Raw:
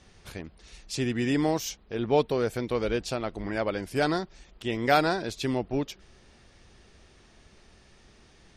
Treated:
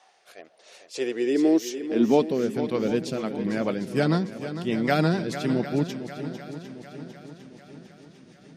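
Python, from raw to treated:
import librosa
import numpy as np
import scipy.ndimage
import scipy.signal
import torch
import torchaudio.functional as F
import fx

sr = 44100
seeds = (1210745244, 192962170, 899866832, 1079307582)

p1 = fx.rotary_switch(x, sr, hz=0.9, then_hz=6.7, switch_at_s=2.43)
p2 = fx.filter_sweep_highpass(p1, sr, from_hz=770.0, to_hz=170.0, start_s=0.24, end_s=2.57, q=4.5)
p3 = p2 + fx.echo_swing(p2, sr, ms=752, ratio=1.5, feedback_pct=48, wet_db=-11, dry=0)
p4 = fx.attack_slew(p3, sr, db_per_s=260.0)
y = p4 * 10.0 ** (1.5 / 20.0)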